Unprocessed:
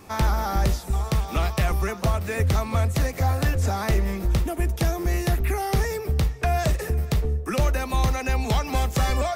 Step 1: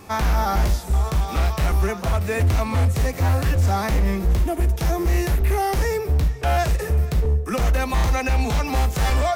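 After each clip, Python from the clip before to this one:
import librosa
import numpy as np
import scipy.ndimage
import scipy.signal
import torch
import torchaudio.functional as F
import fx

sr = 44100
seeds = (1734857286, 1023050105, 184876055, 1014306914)

y = 10.0 ** (-18.5 / 20.0) * (np.abs((x / 10.0 ** (-18.5 / 20.0) + 3.0) % 4.0 - 2.0) - 1.0)
y = fx.hpss(y, sr, part='harmonic', gain_db=9)
y = y * librosa.db_to_amplitude(-3.0)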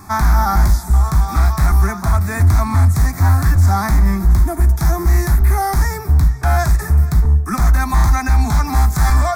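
y = fx.fixed_phaser(x, sr, hz=1200.0, stages=4)
y = y * librosa.db_to_amplitude(7.5)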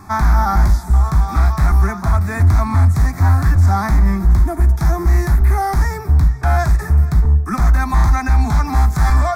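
y = fx.high_shelf(x, sr, hz=5500.0, db=-9.5)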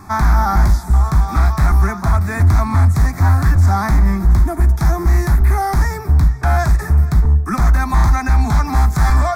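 y = fx.hpss(x, sr, part='percussive', gain_db=3)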